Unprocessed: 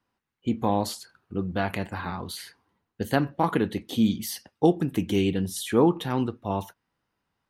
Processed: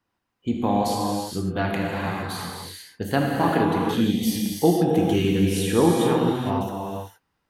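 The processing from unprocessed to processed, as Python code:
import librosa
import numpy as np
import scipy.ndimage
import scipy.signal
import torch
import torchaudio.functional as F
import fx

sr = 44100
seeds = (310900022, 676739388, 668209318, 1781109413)

y = fx.rev_gated(x, sr, seeds[0], gate_ms=490, shape='flat', drr_db=-2.5)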